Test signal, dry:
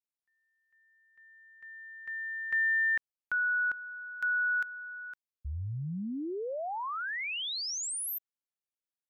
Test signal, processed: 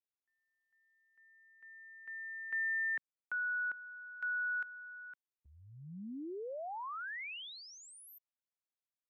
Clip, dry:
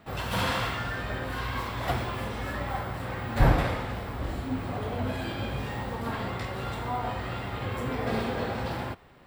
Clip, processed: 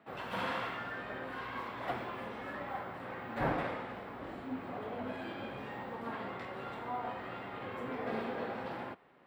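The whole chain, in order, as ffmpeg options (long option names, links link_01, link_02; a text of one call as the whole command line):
ffmpeg -i in.wav -filter_complex "[0:a]acrossover=split=170 3100:gain=0.0891 1 0.2[link_01][link_02][link_03];[link_01][link_02][link_03]amix=inputs=3:normalize=0,volume=-6.5dB" out.wav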